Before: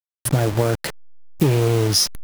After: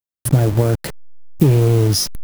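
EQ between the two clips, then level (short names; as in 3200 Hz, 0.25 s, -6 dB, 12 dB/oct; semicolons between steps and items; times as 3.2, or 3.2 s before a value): low shelf 460 Hz +10.5 dB; high shelf 9300 Hz +7.5 dB; -4.0 dB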